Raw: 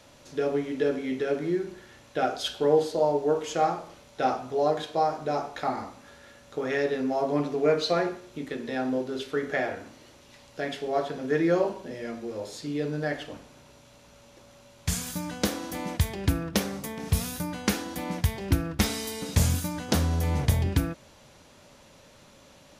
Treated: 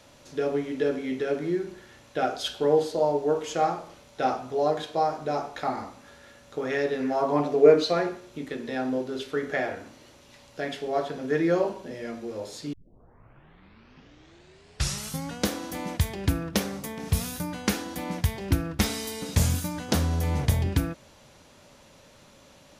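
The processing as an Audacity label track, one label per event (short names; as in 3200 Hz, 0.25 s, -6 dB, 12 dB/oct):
7.000000	7.830000	bell 2200 Hz -> 290 Hz +10.5 dB
12.730000	12.730000	tape start 2.71 s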